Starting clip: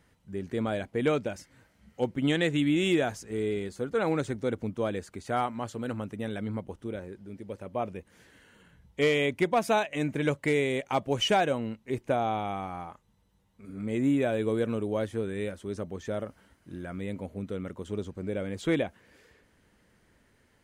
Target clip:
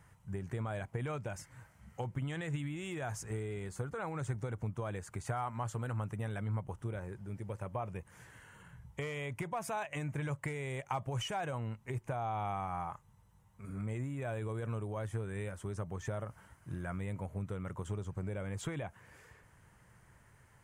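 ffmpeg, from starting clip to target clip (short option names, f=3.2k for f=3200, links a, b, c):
-af "alimiter=limit=-22dB:level=0:latency=1:release=20,acompressor=threshold=-36dB:ratio=5,equalizer=f=125:t=o:w=1:g=10,equalizer=f=250:t=o:w=1:g=-10,equalizer=f=500:t=o:w=1:g=-4,equalizer=f=1k:t=o:w=1:g=6,equalizer=f=4k:t=o:w=1:g=-9,equalizer=f=8k:t=o:w=1:g=4,volume=1.5dB"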